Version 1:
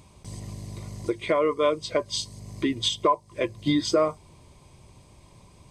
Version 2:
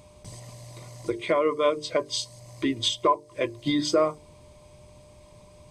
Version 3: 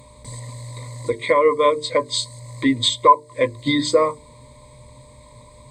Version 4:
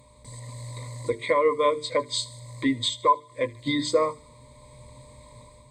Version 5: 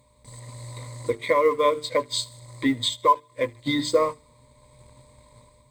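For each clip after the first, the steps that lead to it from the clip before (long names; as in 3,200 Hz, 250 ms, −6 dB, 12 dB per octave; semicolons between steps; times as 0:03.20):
mains-hum notches 50/100/150/200/250/300/350/400/450 Hz; steady tone 600 Hz −53 dBFS
EQ curve with evenly spaced ripples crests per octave 1, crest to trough 15 dB; level +3.5 dB
automatic gain control gain up to 6 dB; delay with a high-pass on its return 76 ms, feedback 52%, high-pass 1,800 Hz, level −20 dB; level −8.5 dB
mu-law and A-law mismatch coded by A; level +2 dB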